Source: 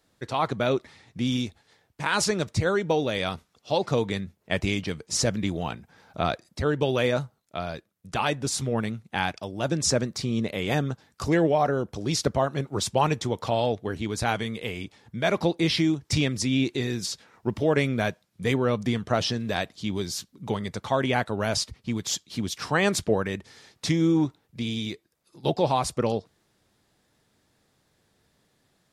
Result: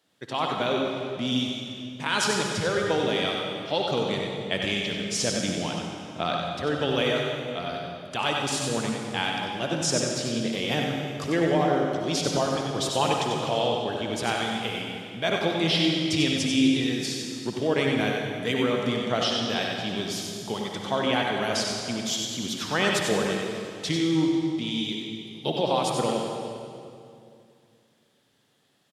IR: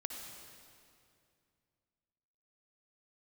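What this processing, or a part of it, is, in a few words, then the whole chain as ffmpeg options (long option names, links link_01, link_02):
PA in a hall: -filter_complex "[0:a]highpass=150,equalizer=frequency=3100:width_type=o:width=0.42:gain=8,aecho=1:1:94:0.501[link_01];[1:a]atrim=start_sample=2205[link_02];[link_01][link_02]afir=irnorm=-1:irlink=0"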